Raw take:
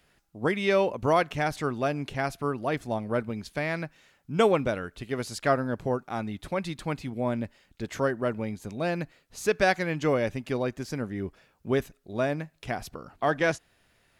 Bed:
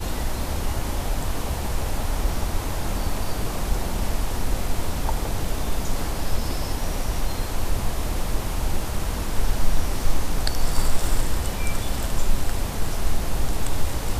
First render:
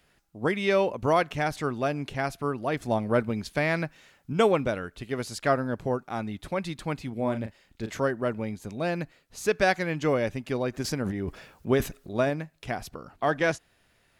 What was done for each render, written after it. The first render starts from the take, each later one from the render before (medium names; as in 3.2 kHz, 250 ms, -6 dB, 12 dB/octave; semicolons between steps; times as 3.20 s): 2.82–4.33 s: gain +4 dB; 7.14–7.97 s: doubling 36 ms -8.5 dB; 10.71–12.30 s: transient shaper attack +4 dB, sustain +12 dB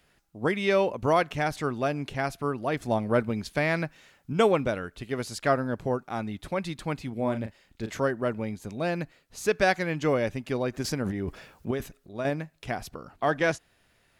11.71–12.25 s: gain -8 dB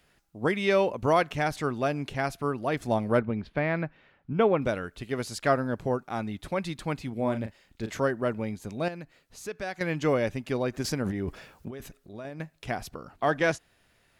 3.19–4.62 s: distance through air 390 m; 8.88–9.81 s: compression 1.5:1, threshold -52 dBFS; 11.68–12.40 s: compression 4:1, threshold -37 dBFS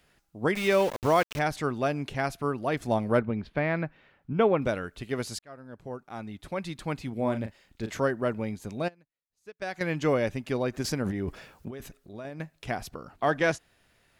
0.55–1.39 s: small samples zeroed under -33 dBFS; 5.39–7.10 s: fade in; 8.82–9.62 s: upward expansion 2.5:1, over -50 dBFS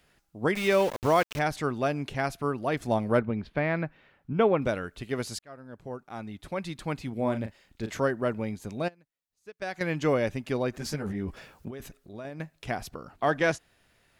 10.78–11.37 s: three-phase chorus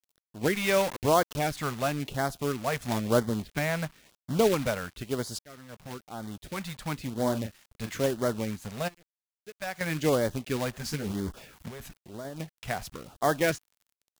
companded quantiser 4-bit; LFO notch sine 1 Hz 300–2600 Hz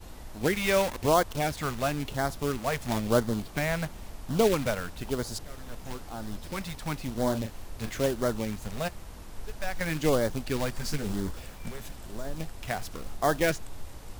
add bed -18 dB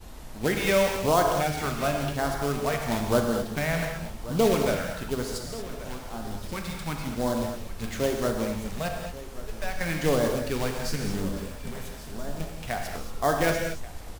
delay 1133 ms -16.5 dB; gated-style reverb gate 260 ms flat, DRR 2 dB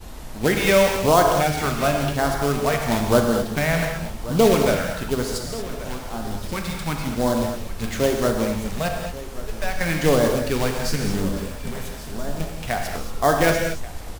trim +6 dB